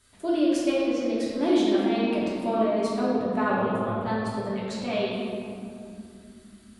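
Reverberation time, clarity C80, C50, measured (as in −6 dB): 2.7 s, 0.0 dB, −2.0 dB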